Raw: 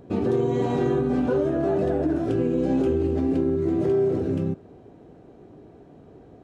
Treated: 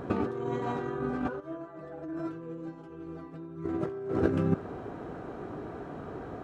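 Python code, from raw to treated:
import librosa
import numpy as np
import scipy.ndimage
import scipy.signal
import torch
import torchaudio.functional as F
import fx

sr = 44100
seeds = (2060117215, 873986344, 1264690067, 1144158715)

y = fx.peak_eq(x, sr, hz=1300.0, db=13.5, octaves=1.2)
y = fx.over_compress(y, sr, threshold_db=-27.0, ratio=-0.5)
y = fx.stiff_resonator(y, sr, f0_hz=160.0, decay_s=0.2, stiffness=0.002, at=(1.39, 3.64), fade=0.02)
y = y * 10.0 ** (-1.5 / 20.0)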